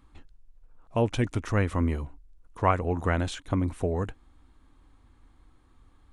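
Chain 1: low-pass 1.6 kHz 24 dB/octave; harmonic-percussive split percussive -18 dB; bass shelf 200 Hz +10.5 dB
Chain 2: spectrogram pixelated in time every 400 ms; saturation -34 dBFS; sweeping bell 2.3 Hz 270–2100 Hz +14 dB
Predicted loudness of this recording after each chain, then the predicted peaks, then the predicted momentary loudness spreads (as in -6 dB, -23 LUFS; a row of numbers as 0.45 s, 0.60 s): -25.0 LUFS, -35.5 LUFS; -9.5 dBFS, -22.0 dBFS; 8 LU, 10 LU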